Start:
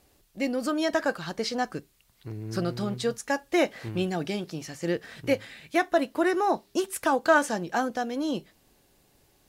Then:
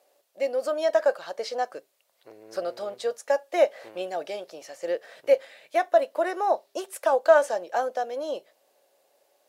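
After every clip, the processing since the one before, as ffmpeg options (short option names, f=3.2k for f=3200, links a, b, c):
-af "highpass=f=570:t=q:w=4.9,volume=-5dB"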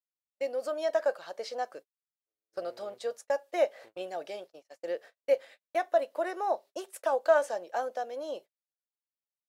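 -af "agate=range=-48dB:threshold=-40dB:ratio=16:detection=peak,volume=-6dB"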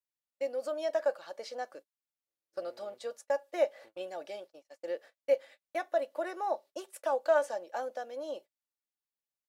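-af "aecho=1:1:3.5:0.34,volume=-3.5dB"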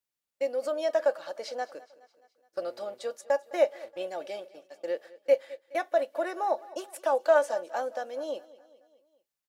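-af "aecho=1:1:210|420|630|840:0.1|0.056|0.0314|0.0176,volume=4.5dB"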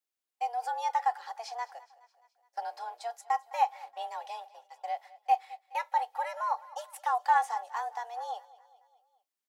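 -af "afreqshift=230,volume=-3dB"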